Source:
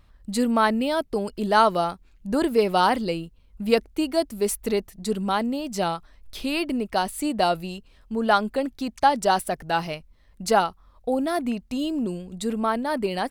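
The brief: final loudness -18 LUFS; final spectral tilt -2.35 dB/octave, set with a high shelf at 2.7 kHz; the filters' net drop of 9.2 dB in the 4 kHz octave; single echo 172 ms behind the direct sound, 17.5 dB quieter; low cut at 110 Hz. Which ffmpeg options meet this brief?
-af "highpass=110,highshelf=f=2700:g=-6.5,equalizer=f=4000:t=o:g=-7,aecho=1:1:172:0.133,volume=2.37"

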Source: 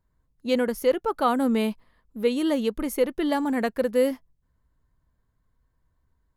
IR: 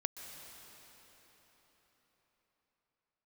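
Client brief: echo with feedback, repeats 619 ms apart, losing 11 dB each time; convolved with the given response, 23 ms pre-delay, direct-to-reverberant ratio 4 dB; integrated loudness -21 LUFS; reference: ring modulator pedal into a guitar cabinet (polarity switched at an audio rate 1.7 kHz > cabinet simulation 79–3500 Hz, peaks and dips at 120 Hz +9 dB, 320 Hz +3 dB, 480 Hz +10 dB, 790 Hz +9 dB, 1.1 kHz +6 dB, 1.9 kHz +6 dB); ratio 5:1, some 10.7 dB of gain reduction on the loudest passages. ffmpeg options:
-filter_complex "[0:a]acompressor=threshold=0.0355:ratio=5,aecho=1:1:619|1238|1857:0.282|0.0789|0.0221,asplit=2[s0][s1];[1:a]atrim=start_sample=2205,adelay=23[s2];[s1][s2]afir=irnorm=-1:irlink=0,volume=0.596[s3];[s0][s3]amix=inputs=2:normalize=0,aeval=exprs='val(0)*sgn(sin(2*PI*1700*n/s))':c=same,highpass=79,equalizer=f=120:t=q:w=4:g=9,equalizer=f=320:t=q:w=4:g=3,equalizer=f=480:t=q:w=4:g=10,equalizer=f=790:t=q:w=4:g=9,equalizer=f=1100:t=q:w=4:g=6,equalizer=f=1900:t=q:w=4:g=6,lowpass=f=3500:w=0.5412,lowpass=f=3500:w=1.3066,volume=1.88"

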